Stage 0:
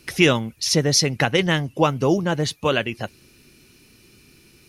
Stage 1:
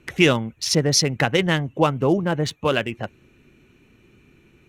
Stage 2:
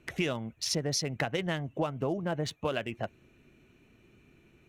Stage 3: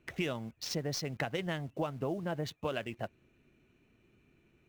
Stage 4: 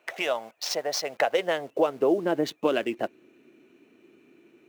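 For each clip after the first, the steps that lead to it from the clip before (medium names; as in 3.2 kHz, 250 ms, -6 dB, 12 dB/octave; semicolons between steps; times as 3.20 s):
local Wiener filter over 9 samples
peaking EQ 660 Hz +7 dB 0.26 oct; compression 6:1, threshold -21 dBFS, peak gain reduction 10 dB; trim -6.5 dB
median filter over 5 samples; in parallel at -8.5 dB: bit crusher 8-bit; on the sum: trim -6.5 dB
high-pass sweep 660 Hz -> 310 Hz, 0.95–2.42 s; trim +8 dB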